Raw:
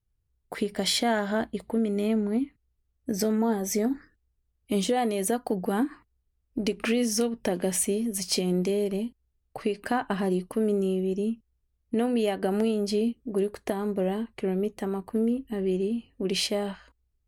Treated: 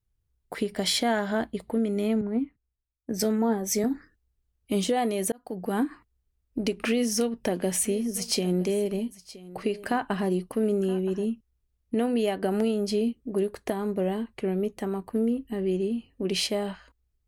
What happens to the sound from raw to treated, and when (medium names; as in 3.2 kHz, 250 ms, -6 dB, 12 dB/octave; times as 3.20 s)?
2.21–3.84 s: three bands expanded up and down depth 70%
5.32–5.78 s: fade in
6.88–11.26 s: delay 971 ms -18.5 dB